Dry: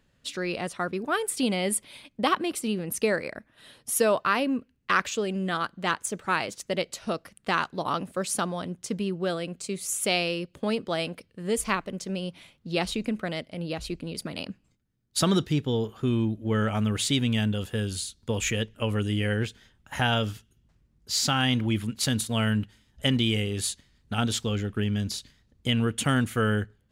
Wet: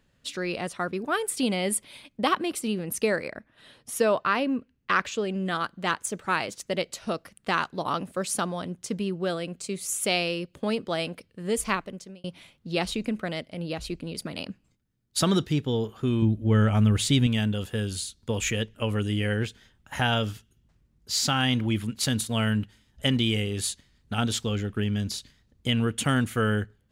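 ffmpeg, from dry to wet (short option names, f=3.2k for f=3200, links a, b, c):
-filter_complex "[0:a]asettb=1/sr,asplit=3[a][b][c];[a]atrim=end=3.284[d];[b]atrim=start=3.28:end=5.46,asetpts=PTS-STARTPTS,afade=t=in:d=0.004:c=qsin,afade=t=out:st=2.176:d=0.004:c=qsin,highshelf=f=7.8k:g=-11[e];[c]atrim=start=5.456[f];[d][e]acrossfade=d=0.004:c1=hsin:c2=qsin[g];[g][f]acrossfade=d=0.004:c1=qsin:c2=hsin,asettb=1/sr,asplit=3[h][i][j];[h]atrim=end=16.224[k];[i]atrim=start=16.22:end=17.27,asetpts=PTS-STARTPTS,afade=t=in:d=0.004:c=qsin,afade=t=out:st=1.046:d=0.004:c=qsin,lowshelf=f=150:g=11.5[l];[j]atrim=start=17.266[m];[k][l]acrossfade=d=0.004:c1=hsin:c2=qsin[n];[n][m]acrossfade=d=0.004:c1=qsin:c2=hsin,asplit=2[o][p];[o]atrim=end=12.24,asetpts=PTS-STARTPTS,afade=t=out:st=11.75:d=0.49[q];[p]atrim=start=12.24,asetpts=PTS-STARTPTS,afade=t=in:d=0.004:c=hsin[r];[q][r]concat=n=2:v=0:a=1"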